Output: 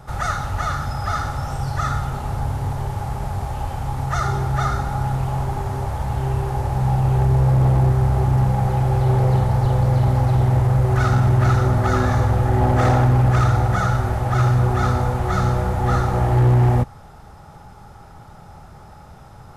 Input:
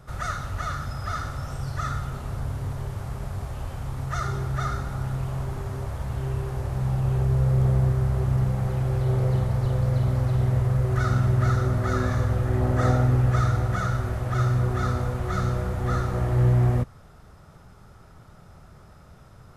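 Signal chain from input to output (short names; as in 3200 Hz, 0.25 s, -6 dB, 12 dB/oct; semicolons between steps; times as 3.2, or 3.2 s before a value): bell 830 Hz +14 dB 0.21 oct; overloaded stage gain 17 dB; gain +6 dB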